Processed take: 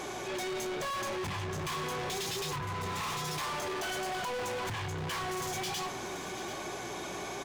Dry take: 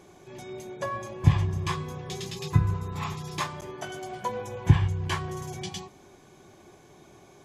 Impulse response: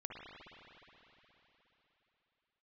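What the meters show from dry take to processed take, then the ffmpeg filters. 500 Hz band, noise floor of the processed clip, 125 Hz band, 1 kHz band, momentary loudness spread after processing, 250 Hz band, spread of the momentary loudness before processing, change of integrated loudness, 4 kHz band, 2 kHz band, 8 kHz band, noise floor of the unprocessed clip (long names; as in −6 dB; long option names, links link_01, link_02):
+0.5 dB, −40 dBFS, −15.0 dB, +0.5 dB, 4 LU, −6.0 dB, 17 LU, −6.0 dB, +3.0 dB, +2.0 dB, +4.5 dB, −54 dBFS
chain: -filter_complex "[0:a]acompressor=threshold=-30dB:ratio=6,aeval=exprs='val(0)+0.00178*(sin(2*PI*60*n/s)+sin(2*PI*2*60*n/s)/2+sin(2*PI*3*60*n/s)/3+sin(2*PI*4*60*n/s)/4+sin(2*PI*5*60*n/s)/5)':channel_layout=same,flanger=delay=6.2:depth=5.2:regen=66:speed=1.2:shape=triangular,asplit=2[link_01][link_02];[link_02]highpass=frequency=720:poles=1,volume=31dB,asoftclip=type=tanh:threshold=-27dB[link_03];[link_01][link_03]amix=inputs=2:normalize=0,lowpass=frequency=7500:poles=1,volume=-6dB,aecho=1:1:739:0.188,volume=34dB,asoftclip=hard,volume=-34dB"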